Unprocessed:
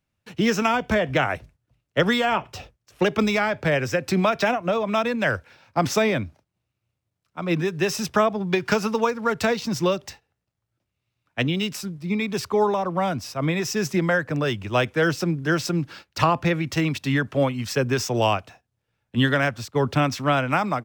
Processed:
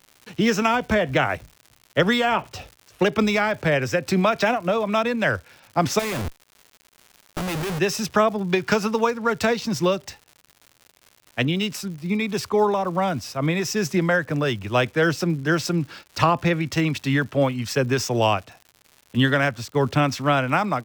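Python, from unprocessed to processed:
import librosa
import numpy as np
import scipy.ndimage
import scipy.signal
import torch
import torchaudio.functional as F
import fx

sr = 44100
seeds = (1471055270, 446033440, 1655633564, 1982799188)

y = fx.schmitt(x, sr, flips_db=-37.0, at=(5.99, 7.79))
y = fx.dmg_crackle(y, sr, seeds[0], per_s=180.0, level_db=-37.0)
y = y * 10.0 ** (1.0 / 20.0)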